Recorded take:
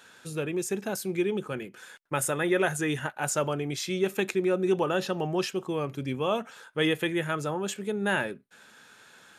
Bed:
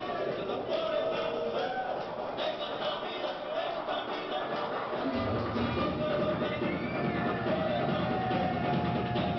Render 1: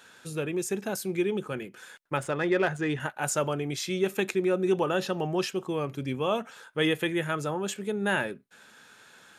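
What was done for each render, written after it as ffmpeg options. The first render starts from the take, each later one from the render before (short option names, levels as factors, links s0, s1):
-filter_complex "[0:a]asettb=1/sr,asplit=3[s0][s1][s2];[s0]atrim=end=2.174[s3];[s1]atrim=start=2.17:end=3,asetpts=PTS-STARTPTS,afade=t=in:d=0.004:c=qsin,afade=t=out:st=0.826:d=0.004:c=qsin,adynamicsmooth=sensitivity=2:basefreq=2900[s4];[s2]atrim=start=2.996[s5];[s3][s4]acrossfade=d=0.004:c1=hsin:c2=qsin[s6];[s6][s5]acrossfade=d=0.004:c1=qsin:c2=hsin"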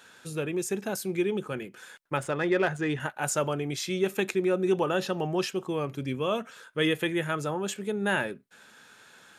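-filter_complex "[0:a]asettb=1/sr,asplit=3[s0][s1][s2];[s0]atrim=end=6.074[s3];[s1]atrim=start=6.07:end=6.95,asetpts=PTS-STARTPTS,afade=t=in:d=0.004:c=qsin,afade=t=out:st=0.876:d=0.004:c=qsin,equalizer=f=820:w=5.7:g=-10.5[s4];[s2]atrim=start=6.946[s5];[s3][s4]acrossfade=d=0.004:c1=hsin:c2=qsin[s6];[s6][s5]acrossfade=d=0.004:c1=qsin:c2=hsin"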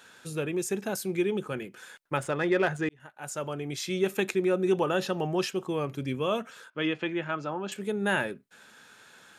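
-filter_complex "[0:a]asettb=1/sr,asplit=3[s0][s1][s2];[s0]atrim=end=6.704[s3];[s1]atrim=start=6.7:end=7.72,asetpts=PTS-STARTPTS,afade=t=in:d=0.004:c=qsin,afade=t=out:st=1.016:d=0.004:c=qsin,highpass=200,equalizer=f=450:t=q:w=4:g=-8,equalizer=f=1900:t=q:w=4:g=-6,equalizer=f=3600:t=q:w=4:g=-7,lowpass=f=4700:w=0.5412,lowpass=f=4700:w=1.3066[s4];[s2]atrim=start=7.716[s5];[s3][s4]acrossfade=d=0.004:c1=hsin:c2=qsin[s6];[s6][s5]acrossfade=d=0.004:c1=qsin:c2=hsin,asplit=2[s7][s8];[s7]atrim=end=2.89,asetpts=PTS-STARTPTS,afade=t=out:st=2.886:d=0.004:c=hsin[s9];[s8]atrim=start=2.89,asetpts=PTS-STARTPTS,afade=t=in:d=1.1[s10];[s9][s10]concat=n=2:v=0:a=1"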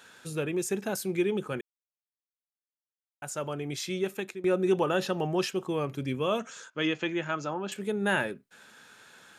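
-filter_complex "[0:a]asettb=1/sr,asplit=3[s0][s1][s2];[s0]atrim=end=6.394[s3];[s1]atrim=start=6.39:end=7.54,asetpts=PTS-STARTPTS,afade=t=in:d=0.004:c=qsin,afade=t=out:st=1.146:d=0.004:c=qsin,lowpass=f=6700:t=q:w=4.6[s4];[s2]atrim=start=7.536[s5];[s3][s4]acrossfade=d=0.004:c1=hsin:c2=qsin[s6];[s6][s5]acrossfade=d=0.004:c1=qsin:c2=hsin,asplit=4[s7][s8][s9][s10];[s7]atrim=end=1.61,asetpts=PTS-STARTPTS,afade=t=out:st=1.606:d=0.004:c=hsin[s11];[s8]atrim=start=1.61:end=3.22,asetpts=PTS-STARTPTS,volume=0[s12];[s9]atrim=start=3.22:end=4.44,asetpts=PTS-STARTPTS,afade=t=in:d=0.004:c=hsin,afade=t=out:st=0.54:d=0.68:silence=0.16788[s13];[s10]atrim=start=4.44,asetpts=PTS-STARTPTS,afade=t=in:d=0.004:c=hsin:silence=0.16788[s14];[s11][s12][s13][s14]concat=n=4:v=0:a=1"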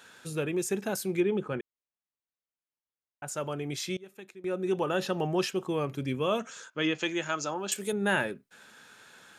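-filter_complex "[0:a]asettb=1/sr,asplit=3[s0][s1][s2];[s0]atrim=end=1.204[s3];[s1]atrim=start=1.2:end=3.28,asetpts=PTS-STARTPTS,afade=t=in:d=0.004:c=qsin,afade=t=out:st=2.076:d=0.004:c=qsin,aemphasis=mode=reproduction:type=75fm[s4];[s2]atrim=start=3.276[s5];[s3][s4]acrossfade=d=0.004:c1=hsin:c2=qsin[s6];[s6][s5]acrossfade=d=0.004:c1=qsin:c2=hsin,asettb=1/sr,asplit=3[s7][s8][s9];[s7]atrim=end=6.984[s10];[s8]atrim=start=6.98:end=7.93,asetpts=PTS-STARTPTS,afade=t=in:d=0.004:c=qsin,afade=t=out:st=0.946:d=0.004:c=qsin,bass=f=250:g=-5,treble=f=4000:g=13[s11];[s9]atrim=start=7.926[s12];[s10][s11]acrossfade=d=0.004:c1=hsin:c2=qsin[s13];[s13][s12]acrossfade=d=0.004:c1=qsin:c2=hsin,asplit=2[s14][s15];[s14]atrim=end=3.97,asetpts=PTS-STARTPTS,afade=t=out:st=3.966:d=0.004:c=hsin:silence=0.0668344[s16];[s15]atrim=start=3.97,asetpts=PTS-STARTPTS,afade=t=in:d=1.22:silence=0.0668344[s17];[s16][s17]concat=n=2:v=0:a=1"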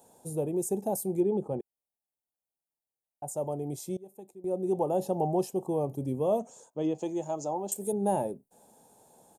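-af "firequalizer=gain_entry='entry(380,0);entry(800,6);entry(1400,-28);entry(8900,3)':delay=0.05:min_phase=1"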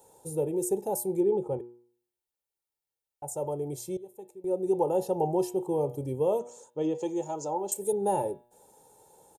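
-af "aecho=1:1:2.2:0.61,bandreject=f=120:t=h:w=4,bandreject=f=240:t=h:w=4,bandreject=f=360:t=h:w=4,bandreject=f=480:t=h:w=4,bandreject=f=600:t=h:w=4,bandreject=f=720:t=h:w=4,bandreject=f=840:t=h:w=4,bandreject=f=960:t=h:w=4,bandreject=f=1080:t=h:w=4,bandreject=f=1200:t=h:w=4,bandreject=f=1320:t=h:w=4,bandreject=f=1440:t=h:w=4,bandreject=f=1560:t=h:w=4,bandreject=f=1680:t=h:w=4,bandreject=f=1800:t=h:w=4,bandreject=f=1920:t=h:w=4,bandreject=f=2040:t=h:w=4,bandreject=f=2160:t=h:w=4,bandreject=f=2280:t=h:w=4,bandreject=f=2400:t=h:w=4,bandreject=f=2520:t=h:w=4,bandreject=f=2640:t=h:w=4,bandreject=f=2760:t=h:w=4,bandreject=f=2880:t=h:w=4,bandreject=f=3000:t=h:w=4,bandreject=f=3120:t=h:w=4,bandreject=f=3240:t=h:w=4,bandreject=f=3360:t=h:w=4,bandreject=f=3480:t=h:w=4,bandreject=f=3600:t=h:w=4,bandreject=f=3720:t=h:w=4,bandreject=f=3840:t=h:w=4,bandreject=f=3960:t=h:w=4"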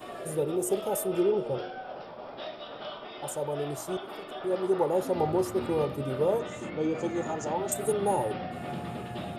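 -filter_complex "[1:a]volume=0.473[s0];[0:a][s0]amix=inputs=2:normalize=0"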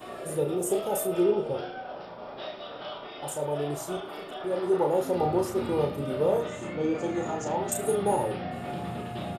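-filter_complex "[0:a]asplit=2[s0][s1];[s1]adelay=34,volume=0.562[s2];[s0][s2]amix=inputs=2:normalize=0,aecho=1:1:73:0.133"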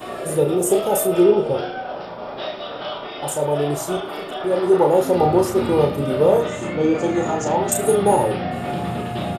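-af "volume=2.99"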